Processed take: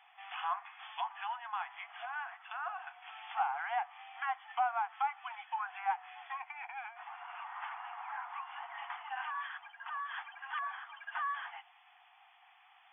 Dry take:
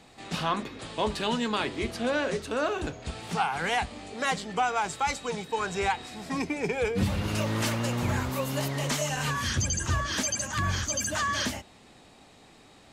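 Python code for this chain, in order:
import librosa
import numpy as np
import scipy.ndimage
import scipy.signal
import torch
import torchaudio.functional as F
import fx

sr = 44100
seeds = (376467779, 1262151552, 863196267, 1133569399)

y = fx.env_lowpass_down(x, sr, base_hz=1300.0, full_db=-25.5)
y = fx.brickwall_bandpass(y, sr, low_hz=690.0, high_hz=3500.0)
y = F.gain(torch.from_numpy(y), -4.0).numpy()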